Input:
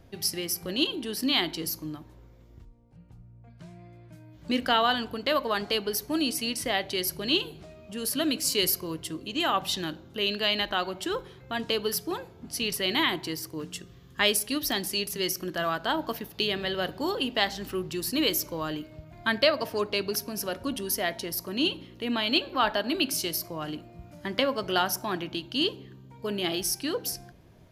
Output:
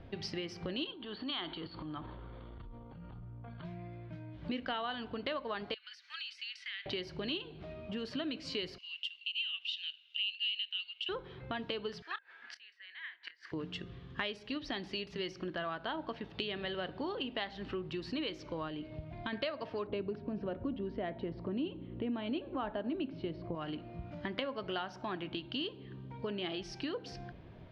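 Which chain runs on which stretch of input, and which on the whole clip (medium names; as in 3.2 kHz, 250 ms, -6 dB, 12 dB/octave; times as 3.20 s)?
0.91–3.65 s: upward compressor, threshold -30 dBFS + transient shaper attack -10 dB, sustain +5 dB + rippled Chebyshev low-pass 4.6 kHz, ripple 9 dB
5.74–6.86 s: steep high-pass 1.5 kHz + compression 5:1, threshold -39 dBFS
8.78–11.09 s: resonant high-pass 2.8 kHz, resonance Q 13 + differentiator
12.02–13.52 s: resonant high-pass 1.7 kHz, resonance Q 7.7 + inverted gate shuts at -23 dBFS, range -31 dB + doubling 27 ms -13.5 dB
18.68–19.33 s: peaking EQ 1.4 kHz -6 dB 0.66 oct + compression 2.5:1, threshold -33 dBFS
19.87–23.55 s: low-pass 4 kHz 24 dB/octave + tilt shelf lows +8.5 dB, about 940 Hz
whole clip: low-pass 3.7 kHz 24 dB/octave; compression 4:1, threshold -40 dBFS; trim +2.5 dB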